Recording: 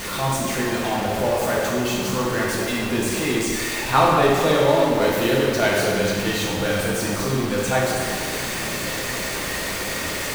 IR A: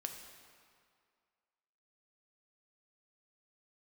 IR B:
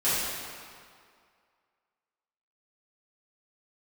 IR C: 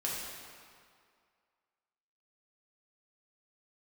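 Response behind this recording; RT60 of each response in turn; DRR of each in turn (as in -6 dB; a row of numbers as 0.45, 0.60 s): C; 2.1, 2.1, 2.1 s; 4.0, -14.0, -5.5 dB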